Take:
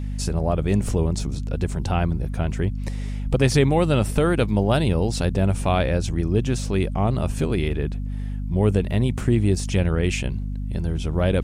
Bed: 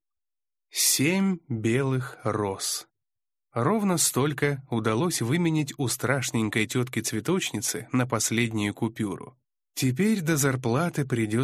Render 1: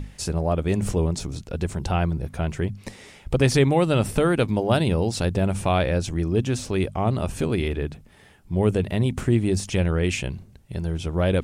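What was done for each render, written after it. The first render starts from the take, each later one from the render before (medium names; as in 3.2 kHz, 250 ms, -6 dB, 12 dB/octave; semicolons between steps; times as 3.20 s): hum notches 50/100/150/200/250 Hz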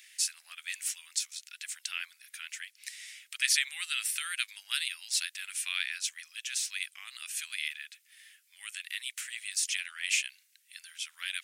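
steep high-pass 1.8 kHz 36 dB/octave; treble shelf 7.6 kHz +7.5 dB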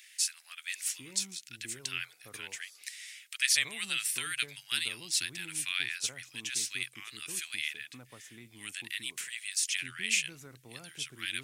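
add bed -27.5 dB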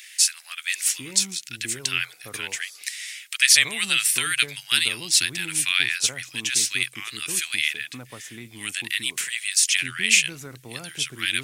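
trim +11.5 dB; peak limiter -1 dBFS, peak gain reduction 2 dB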